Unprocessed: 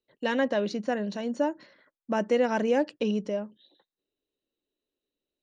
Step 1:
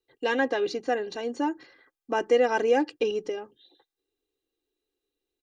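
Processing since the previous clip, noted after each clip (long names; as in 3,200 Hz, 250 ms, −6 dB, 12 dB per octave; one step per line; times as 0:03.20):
comb filter 2.5 ms, depth 90%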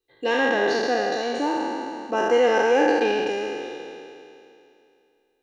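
peak hold with a decay on every bin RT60 2.67 s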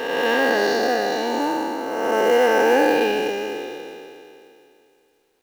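peak hold with a rise ahead of every peak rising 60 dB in 1.80 s
log-companded quantiser 6 bits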